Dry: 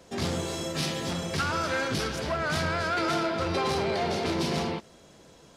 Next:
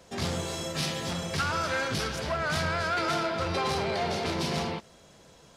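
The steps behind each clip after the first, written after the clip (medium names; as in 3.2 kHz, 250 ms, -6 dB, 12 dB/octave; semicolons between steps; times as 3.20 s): peaking EQ 310 Hz -5 dB 1 oct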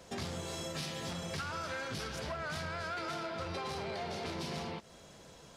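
compression 4:1, threshold -38 dBFS, peak gain reduction 11.5 dB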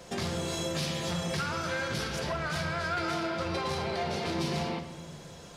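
simulated room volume 1200 m³, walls mixed, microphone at 0.86 m; trim +5.5 dB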